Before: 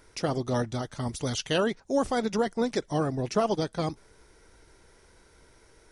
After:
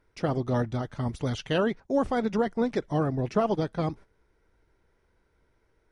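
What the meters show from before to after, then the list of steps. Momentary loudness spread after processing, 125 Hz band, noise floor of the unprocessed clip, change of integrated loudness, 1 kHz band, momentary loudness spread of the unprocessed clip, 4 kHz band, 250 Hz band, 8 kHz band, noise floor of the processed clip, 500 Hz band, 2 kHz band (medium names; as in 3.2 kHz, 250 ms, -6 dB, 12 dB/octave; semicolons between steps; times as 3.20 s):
6 LU, +2.5 dB, -59 dBFS, +0.5 dB, 0.0 dB, 6 LU, -5.5 dB, +1.5 dB, under -10 dB, -70 dBFS, 0.0 dB, -1.0 dB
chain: gate -45 dBFS, range -12 dB; tone controls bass +3 dB, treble -14 dB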